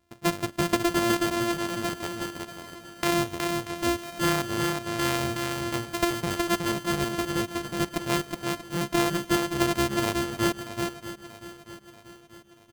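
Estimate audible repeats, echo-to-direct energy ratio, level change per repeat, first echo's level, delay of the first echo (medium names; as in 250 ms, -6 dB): 8, -3.5 dB, no regular repeats, -4.0 dB, 368 ms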